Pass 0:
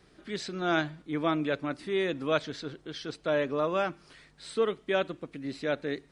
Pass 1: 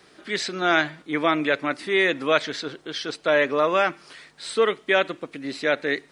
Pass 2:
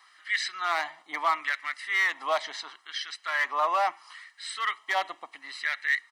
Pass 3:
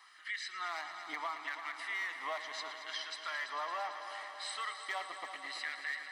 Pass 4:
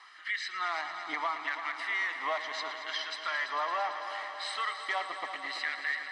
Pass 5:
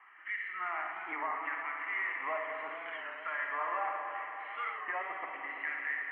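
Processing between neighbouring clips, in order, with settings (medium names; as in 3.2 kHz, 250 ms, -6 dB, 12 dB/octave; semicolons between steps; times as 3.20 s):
high-pass 480 Hz 6 dB/octave; dynamic bell 2 kHz, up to +7 dB, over -50 dBFS, Q 2.8; in parallel at -1.5 dB: peak limiter -20.5 dBFS, peak gain reduction 8.5 dB; on the sum: trim +5 dB
comb 1 ms, depth 68%; hard clipper -15.5 dBFS, distortion -13 dB; LFO high-pass sine 0.73 Hz 710–1700 Hz; trim -7 dB
compression 4:1, threshold -37 dBFS, peak gain reduction 14 dB; multi-head delay 112 ms, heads all three, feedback 73%, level -14 dB; trim -2 dB
distance through air 83 m; trim +7 dB
steep low-pass 2.7 kHz 72 dB/octave; Schroeder reverb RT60 1.7 s, DRR 1 dB; warped record 33 1/3 rpm, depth 100 cents; trim -4.5 dB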